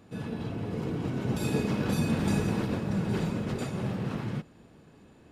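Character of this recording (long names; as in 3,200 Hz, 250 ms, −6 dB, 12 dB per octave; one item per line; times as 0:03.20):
background noise floor −56 dBFS
spectral slope −7.0 dB per octave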